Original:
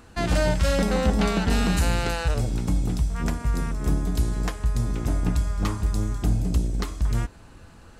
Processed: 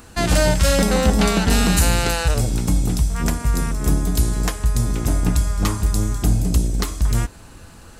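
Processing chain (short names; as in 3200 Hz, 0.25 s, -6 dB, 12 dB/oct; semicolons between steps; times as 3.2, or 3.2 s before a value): high shelf 6100 Hz +11.5 dB; gain +5 dB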